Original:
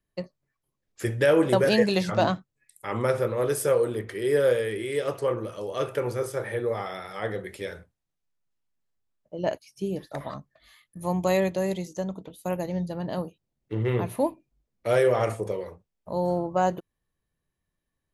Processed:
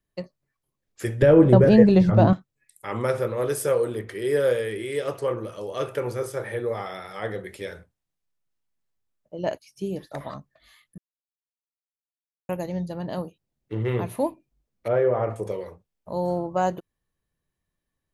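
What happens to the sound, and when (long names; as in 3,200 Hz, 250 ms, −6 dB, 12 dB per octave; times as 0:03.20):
0:01.22–0:02.33: spectral tilt −4.5 dB per octave
0:10.98–0:12.49: silence
0:14.88–0:15.36: low-pass filter 1,300 Hz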